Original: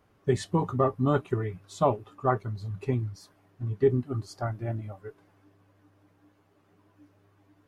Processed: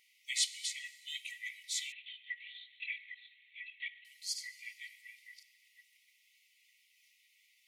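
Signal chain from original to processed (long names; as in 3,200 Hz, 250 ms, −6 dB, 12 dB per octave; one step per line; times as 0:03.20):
delay that plays each chunk backwards 543 ms, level −7.5 dB
linear-phase brick-wall high-pass 1,900 Hz
dense smooth reverb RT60 2.5 s, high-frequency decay 0.6×, DRR 12.5 dB
0:01.92–0:04.05: linear-prediction vocoder at 8 kHz whisper
level +9.5 dB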